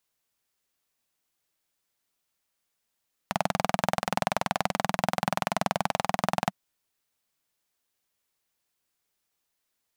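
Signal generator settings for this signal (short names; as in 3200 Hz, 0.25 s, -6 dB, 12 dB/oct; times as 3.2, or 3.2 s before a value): single-cylinder engine model, steady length 3.21 s, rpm 2500, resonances 190/720 Hz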